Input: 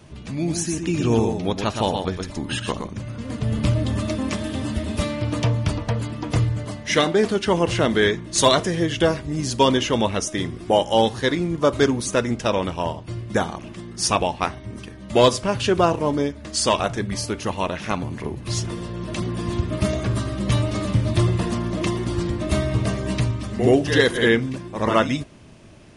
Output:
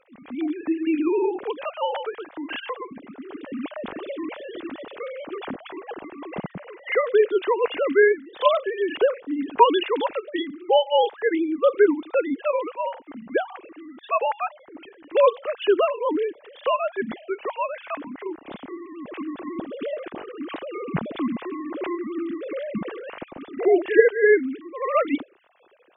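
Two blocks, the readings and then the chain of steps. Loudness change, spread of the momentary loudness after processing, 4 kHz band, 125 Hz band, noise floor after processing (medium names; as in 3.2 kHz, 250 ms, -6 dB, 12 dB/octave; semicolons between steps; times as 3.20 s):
-2.0 dB, 18 LU, -9.5 dB, under -20 dB, -51 dBFS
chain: formants replaced by sine waves; trim -2.5 dB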